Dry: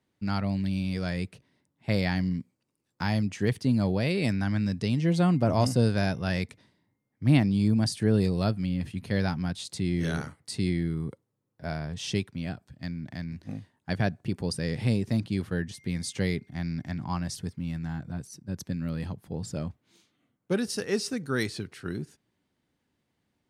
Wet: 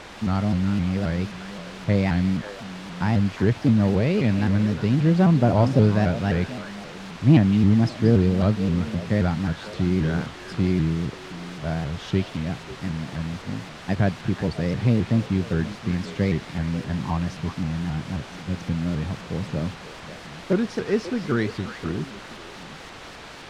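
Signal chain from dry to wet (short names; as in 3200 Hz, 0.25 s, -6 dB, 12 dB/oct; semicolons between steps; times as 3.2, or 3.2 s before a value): requantised 6-bit, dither triangular; tape spacing loss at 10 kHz 29 dB; delay with a stepping band-pass 0.18 s, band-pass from 3600 Hz, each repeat -1.4 oct, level -5 dB; shaped vibrato saw up 3.8 Hz, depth 160 cents; gain +6.5 dB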